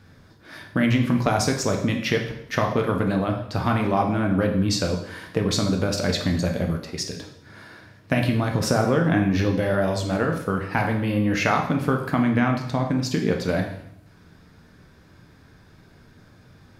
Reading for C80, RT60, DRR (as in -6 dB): 10.0 dB, 0.75 s, 2.0 dB